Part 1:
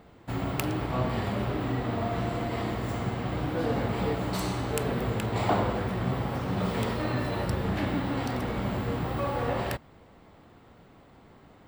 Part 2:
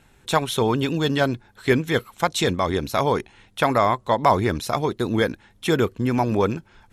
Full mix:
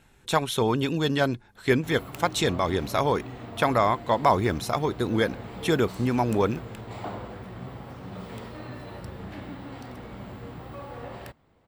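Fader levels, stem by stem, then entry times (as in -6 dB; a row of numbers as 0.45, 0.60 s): -10.0, -3.0 dB; 1.55, 0.00 s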